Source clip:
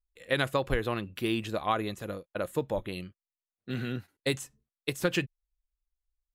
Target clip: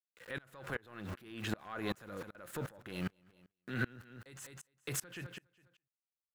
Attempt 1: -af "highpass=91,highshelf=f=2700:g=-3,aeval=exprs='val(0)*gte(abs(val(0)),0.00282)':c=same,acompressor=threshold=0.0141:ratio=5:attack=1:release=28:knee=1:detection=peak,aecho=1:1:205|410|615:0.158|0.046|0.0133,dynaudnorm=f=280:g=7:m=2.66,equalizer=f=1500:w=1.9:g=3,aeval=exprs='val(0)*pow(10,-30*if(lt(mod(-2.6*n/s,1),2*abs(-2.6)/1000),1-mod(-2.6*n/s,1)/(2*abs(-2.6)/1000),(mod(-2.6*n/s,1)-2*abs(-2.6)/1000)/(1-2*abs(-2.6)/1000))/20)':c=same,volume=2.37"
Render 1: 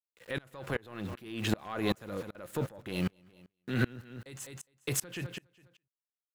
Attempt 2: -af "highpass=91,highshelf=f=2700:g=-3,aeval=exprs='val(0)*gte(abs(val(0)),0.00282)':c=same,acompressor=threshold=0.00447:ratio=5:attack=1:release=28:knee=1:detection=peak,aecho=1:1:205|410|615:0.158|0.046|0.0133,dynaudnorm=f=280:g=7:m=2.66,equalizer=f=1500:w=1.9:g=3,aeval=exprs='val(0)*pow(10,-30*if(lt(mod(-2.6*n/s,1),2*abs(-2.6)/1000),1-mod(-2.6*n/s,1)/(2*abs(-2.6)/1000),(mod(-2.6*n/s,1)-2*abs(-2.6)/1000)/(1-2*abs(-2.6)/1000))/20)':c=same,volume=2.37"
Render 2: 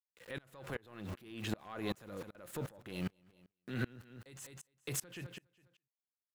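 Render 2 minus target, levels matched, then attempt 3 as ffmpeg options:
2 kHz band -3.5 dB
-af "highpass=91,highshelf=f=2700:g=-3,aeval=exprs='val(0)*gte(abs(val(0)),0.00282)':c=same,acompressor=threshold=0.00447:ratio=5:attack=1:release=28:knee=1:detection=peak,aecho=1:1:205|410|615:0.158|0.046|0.0133,dynaudnorm=f=280:g=7:m=2.66,equalizer=f=1500:w=1.9:g=9.5,aeval=exprs='val(0)*pow(10,-30*if(lt(mod(-2.6*n/s,1),2*abs(-2.6)/1000),1-mod(-2.6*n/s,1)/(2*abs(-2.6)/1000),(mod(-2.6*n/s,1)-2*abs(-2.6)/1000)/(1-2*abs(-2.6)/1000))/20)':c=same,volume=2.37"

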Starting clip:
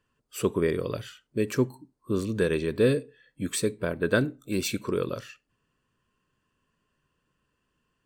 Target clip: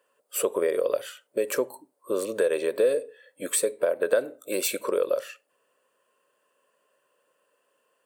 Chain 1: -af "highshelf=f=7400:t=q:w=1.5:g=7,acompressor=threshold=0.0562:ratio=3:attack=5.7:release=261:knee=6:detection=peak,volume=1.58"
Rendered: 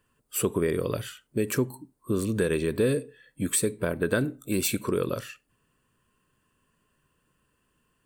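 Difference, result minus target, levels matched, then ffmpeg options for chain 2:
500 Hz band -3.0 dB
-af "highpass=f=550:t=q:w=5,highshelf=f=7400:t=q:w=1.5:g=7,acompressor=threshold=0.0562:ratio=3:attack=5.7:release=261:knee=6:detection=peak,volume=1.58"

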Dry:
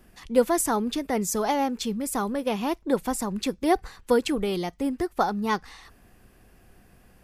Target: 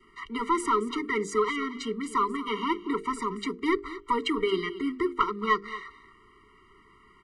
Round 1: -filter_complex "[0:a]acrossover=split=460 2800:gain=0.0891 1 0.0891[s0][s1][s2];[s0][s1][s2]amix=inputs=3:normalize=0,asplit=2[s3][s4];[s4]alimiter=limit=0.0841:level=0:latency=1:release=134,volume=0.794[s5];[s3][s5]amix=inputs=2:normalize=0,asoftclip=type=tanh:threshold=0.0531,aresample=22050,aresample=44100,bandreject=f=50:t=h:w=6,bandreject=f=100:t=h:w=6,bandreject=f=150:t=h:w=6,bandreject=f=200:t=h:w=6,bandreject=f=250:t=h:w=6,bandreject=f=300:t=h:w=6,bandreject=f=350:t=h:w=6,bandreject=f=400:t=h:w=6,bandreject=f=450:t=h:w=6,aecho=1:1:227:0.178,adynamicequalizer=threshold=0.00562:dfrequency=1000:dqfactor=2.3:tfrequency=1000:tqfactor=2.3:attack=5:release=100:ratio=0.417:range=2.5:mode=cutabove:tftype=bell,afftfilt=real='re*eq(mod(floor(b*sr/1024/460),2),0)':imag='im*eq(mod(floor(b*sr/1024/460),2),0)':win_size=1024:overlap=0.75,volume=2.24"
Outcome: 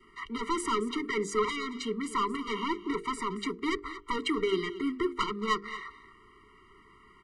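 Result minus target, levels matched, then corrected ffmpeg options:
saturation: distortion +12 dB
-filter_complex "[0:a]acrossover=split=460 2800:gain=0.0891 1 0.0891[s0][s1][s2];[s0][s1][s2]amix=inputs=3:normalize=0,asplit=2[s3][s4];[s4]alimiter=limit=0.0841:level=0:latency=1:release=134,volume=0.794[s5];[s3][s5]amix=inputs=2:normalize=0,asoftclip=type=tanh:threshold=0.2,aresample=22050,aresample=44100,bandreject=f=50:t=h:w=6,bandreject=f=100:t=h:w=6,bandreject=f=150:t=h:w=6,bandreject=f=200:t=h:w=6,bandreject=f=250:t=h:w=6,bandreject=f=300:t=h:w=6,bandreject=f=350:t=h:w=6,bandreject=f=400:t=h:w=6,bandreject=f=450:t=h:w=6,aecho=1:1:227:0.178,adynamicequalizer=threshold=0.00562:dfrequency=1000:dqfactor=2.3:tfrequency=1000:tqfactor=2.3:attack=5:release=100:ratio=0.417:range=2.5:mode=cutabove:tftype=bell,afftfilt=real='re*eq(mod(floor(b*sr/1024/460),2),0)':imag='im*eq(mod(floor(b*sr/1024/460),2),0)':win_size=1024:overlap=0.75,volume=2.24"

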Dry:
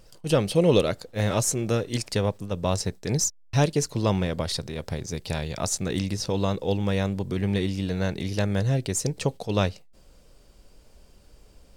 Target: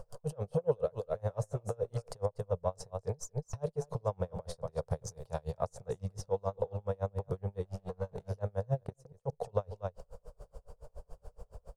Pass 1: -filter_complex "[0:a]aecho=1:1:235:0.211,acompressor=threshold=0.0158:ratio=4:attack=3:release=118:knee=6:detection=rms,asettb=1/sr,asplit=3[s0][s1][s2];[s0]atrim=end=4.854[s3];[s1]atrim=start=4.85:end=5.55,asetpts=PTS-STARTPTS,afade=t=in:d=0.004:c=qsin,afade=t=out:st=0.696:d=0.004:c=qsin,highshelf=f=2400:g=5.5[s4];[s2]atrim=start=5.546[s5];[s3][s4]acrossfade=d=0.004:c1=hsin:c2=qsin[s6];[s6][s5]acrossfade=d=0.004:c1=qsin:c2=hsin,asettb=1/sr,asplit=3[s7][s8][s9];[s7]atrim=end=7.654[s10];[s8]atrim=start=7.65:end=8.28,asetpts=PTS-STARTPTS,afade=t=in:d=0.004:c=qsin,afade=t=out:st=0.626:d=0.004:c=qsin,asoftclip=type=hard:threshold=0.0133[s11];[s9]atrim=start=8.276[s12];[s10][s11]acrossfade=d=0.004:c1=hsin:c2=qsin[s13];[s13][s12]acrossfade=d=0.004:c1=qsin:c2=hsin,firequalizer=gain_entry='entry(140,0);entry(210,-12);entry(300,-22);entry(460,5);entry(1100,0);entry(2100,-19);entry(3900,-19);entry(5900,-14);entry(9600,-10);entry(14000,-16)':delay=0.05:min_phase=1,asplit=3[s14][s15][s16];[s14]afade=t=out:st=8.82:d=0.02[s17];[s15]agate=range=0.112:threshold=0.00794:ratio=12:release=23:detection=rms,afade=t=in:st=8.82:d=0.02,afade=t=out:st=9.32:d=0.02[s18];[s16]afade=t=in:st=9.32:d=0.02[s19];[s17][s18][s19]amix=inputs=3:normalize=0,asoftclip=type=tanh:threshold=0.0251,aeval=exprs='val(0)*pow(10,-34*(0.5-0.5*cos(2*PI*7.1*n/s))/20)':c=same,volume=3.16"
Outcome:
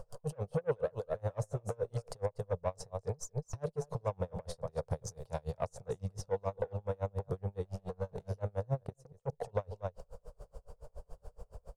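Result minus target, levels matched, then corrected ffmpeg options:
saturation: distortion +17 dB
-filter_complex "[0:a]aecho=1:1:235:0.211,acompressor=threshold=0.0158:ratio=4:attack=3:release=118:knee=6:detection=rms,asettb=1/sr,asplit=3[s0][s1][s2];[s0]atrim=end=4.854[s3];[s1]atrim=start=4.85:end=5.55,asetpts=PTS-STARTPTS,afade=t=in:d=0.004:c=qsin,afade=t=out:st=0.696:d=0.004:c=qsin,highshelf=f=2400:g=5.5[s4];[s2]atrim=start=5.546[s5];[s3][s4]acrossfade=d=0.004:c1=hsin:c2=qsin[s6];[s6][s5]acrossfade=d=0.004:c1=qsin:c2=hsin,asettb=1/sr,asplit=3[s7][s8][s9];[s7]atrim=end=7.654[s10];[s8]atrim=start=7.65:end=8.28,asetpts=PTS-STARTPTS,afade=t=in:d=0.004:c=qsin,afade=t=out:st=0.626:d=0.004:c=qsin,asoftclip=type=hard:threshold=0.0133[s11];[s9]atrim=start=8.276[s12];[s10][s11]acrossfade=d=0.004:c1=hsin:c2=qsin[s13];[s13][s12]acrossfade=d=0.004:c1=qsin:c2=hsin,firequalizer=gain_entry='entry(140,0);entry(210,-12);entry(300,-22);entry(460,5);entry(1100,0);entry(2100,-19);entry(3900,-19);entry(5900,-14);entry(9600,-10);entry(14000,-16)':delay=0.05:min_phase=1,asplit=3[s14][s15][s16];[s14]afade=t=out:st=8.82:d=0.02[s17];[s15]agate=range=0.112:threshold=0.00794:ratio=12:release=23:detection=rms,afade=t=in:st=8.82:d=0.02,afade=t=out:st=9.32:d=0.02[s18];[s16]afade=t=in:st=9.32:d=0.02[s19];[s17][s18][s19]amix=inputs=3:normalize=0,asoftclip=type=tanh:threshold=0.0841,aeval=exprs='val(0)*pow(10,-34*(0.5-0.5*cos(2*PI*7.1*n/s))/20)':c=same,volume=3.16"

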